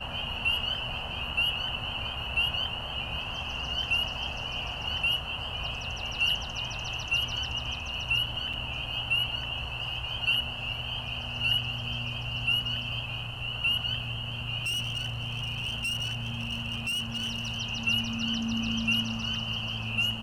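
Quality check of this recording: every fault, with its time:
8.53–8.54 s: dropout 5.6 ms
14.64–17.59 s: clipped -28 dBFS

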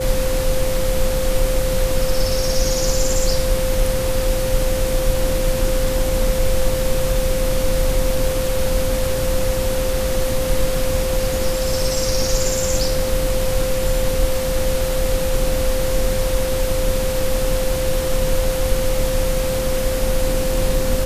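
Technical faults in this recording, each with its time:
whine 520 Hz -21 dBFS

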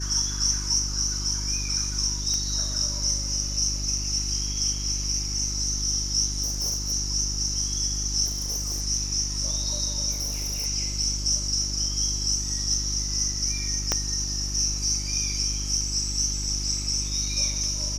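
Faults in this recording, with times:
hum 50 Hz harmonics 7 -32 dBFS
2.34 s: pop -17 dBFS
6.42–6.93 s: clipped -23 dBFS
8.25–8.82 s: clipped -24.5 dBFS
10.11–10.67 s: clipped -25.5 dBFS
13.92 s: pop -8 dBFS

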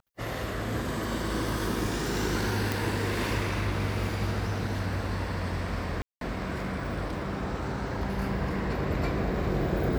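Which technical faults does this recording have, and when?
2.72 s: pop
6.02–6.21 s: dropout 192 ms

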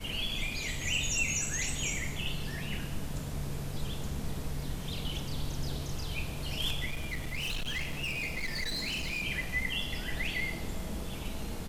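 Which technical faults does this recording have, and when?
6.90–9.23 s: clipped -30.5 dBFS

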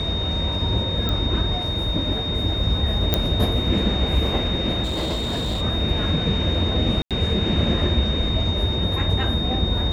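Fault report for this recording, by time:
whine 3.7 kHz -26 dBFS
1.09 s: pop -11 dBFS
3.14 s: pop -3 dBFS
4.83–5.62 s: clipped -21 dBFS
7.02–7.11 s: dropout 87 ms

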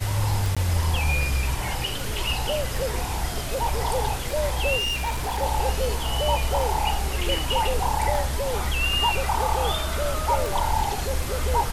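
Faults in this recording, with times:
tick 78 rpm
0.55–0.57 s: dropout 16 ms
4.78–5.43 s: clipped -22.5 dBFS

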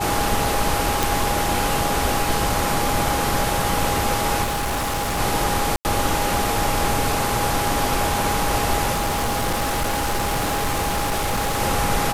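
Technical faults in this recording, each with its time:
whine 820 Hz -25 dBFS
1.03 s: pop
4.43–5.20 s: clipped -20.5 dBFS
5.76–5.85 s: dropout 89 ms
8.92–11.61 s: clipped -18.5 dBFS

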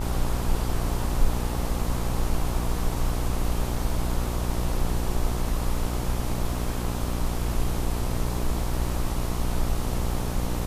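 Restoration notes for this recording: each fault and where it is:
buzz 60 Hz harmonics 22 -29 dBFS

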